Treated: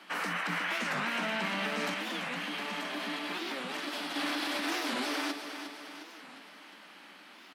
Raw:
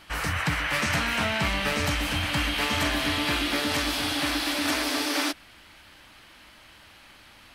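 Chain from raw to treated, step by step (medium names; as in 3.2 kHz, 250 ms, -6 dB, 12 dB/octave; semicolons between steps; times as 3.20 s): Chebyshev high-pass 170 Hz, order 10; treble shelf 4.7 kHz -8 dB; peak limiter -24.5 dBFS, peak gain reduction 9 dB; 1.94–4.16 s: flange 1.6 Hz, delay 2 ms, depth 6.8 ms, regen +56%; feedback delay 357 ms, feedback 54%, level -9 dB; warped record 45 rpm, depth 250 cents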